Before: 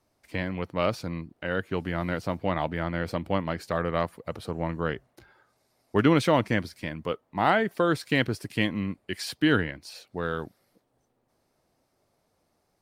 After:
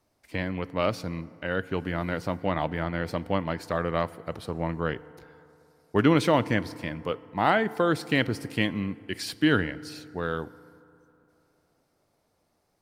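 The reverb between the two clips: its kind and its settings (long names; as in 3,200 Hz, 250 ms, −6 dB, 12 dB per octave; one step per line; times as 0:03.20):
feedback delay network reverb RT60 2.9 s, high-frequency decay 0.45×, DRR 17.5 dB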